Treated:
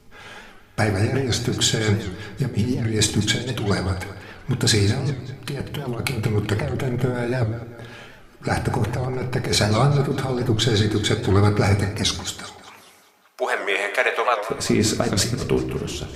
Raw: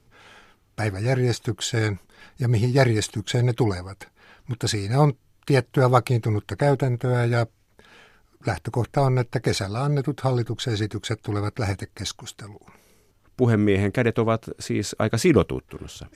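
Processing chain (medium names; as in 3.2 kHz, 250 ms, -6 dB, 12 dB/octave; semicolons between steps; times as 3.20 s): 12.16–14.50 s: high-pass 620 Hz 24 dB/octave; compressor with a negative ratio -24 dBFS, ratio -0.5; tape echo 194 ms, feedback 57%, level -12.5 dB, low-pass 5.5 kHz; reverberation RT60 0.60 s, pre-delay 5 ms, DRR 5.5 dB; warped record 78 rpm, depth 160 cents; trim +4 dB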